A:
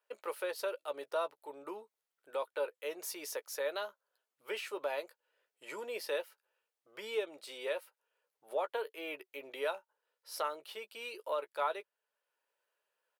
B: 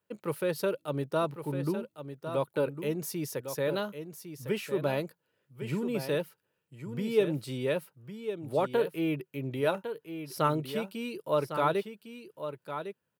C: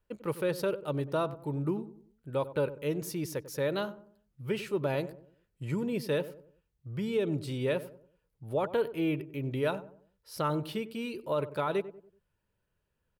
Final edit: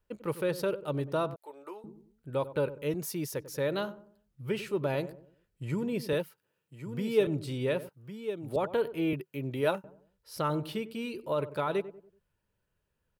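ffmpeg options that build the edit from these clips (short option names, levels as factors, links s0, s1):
-filter_complex "[1:a]asplit=4[s0][s1][s2][s3];[2:a]asplit=6[s4][s5][s6][s7][s8][s9];[s4]atrim=end=1.362[s10];[0:a]atrim=start=1.358:end=1.842[s11];[s5]atrim=start=1.838:end=2.942[s12];[s0]atrim=start=2.938:end=3.342[s13];[s6]atrim=start=3.338:end=6.132[s14];[s1]atrim=start=6.128:end=7.272[s15];[s7]atrim=start=7.268:end=7.892[s16];[s2]atrim=start=7.888:end=8.562[s17];[s8]atrim=start=8.558:end=9.132[s18];[s3]atrim=start=9.128:end=9.842[s19];[s9]atrim=start=9.838[s20];[s10][s11]acrossfade=d=0.004:c1=hsin:c2=hsin[s21];[s21][s12]acrossfade=d=0.004:c1=hsin:c2=hsin[s22];[s22][s13]acrossfade=d=0.004:c1=hsin:c2=hsin[s23];[s23][s14]acrossfade=d=0.004:c1=hsin:c2=hsin[s24];[s24][s15]acrossfade=d=0.004:c1=hsin:c2=hsin[s25];[s25][s16]acrossfade=d=0.004:c1=hsin:c2=hsin[s26];[s26][s17]acrossfade=d=0.004:c1=hsin:c2=hsin[s27];[s27][s18]acrossfade=d=0.004:c1=hsin:c2=hsin[s28];[s28][s19]acrossfade=d=0.004:c1=hsin:c2=hsin[s29];[s29][s20]acrossfade=d=0.004:c1=hsin:c2=hsin"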